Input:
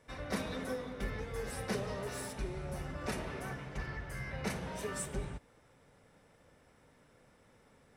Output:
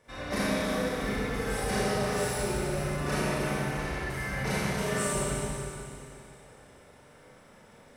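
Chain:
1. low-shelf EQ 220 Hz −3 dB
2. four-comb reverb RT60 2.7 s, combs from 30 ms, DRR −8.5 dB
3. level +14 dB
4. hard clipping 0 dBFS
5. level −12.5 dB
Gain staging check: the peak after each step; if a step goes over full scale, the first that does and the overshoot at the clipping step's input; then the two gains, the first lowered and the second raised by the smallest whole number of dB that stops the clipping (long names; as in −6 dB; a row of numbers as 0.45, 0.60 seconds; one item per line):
−22.5, −18.0, −4.0, −4.0, −16.5 dBFS
no step passes full scale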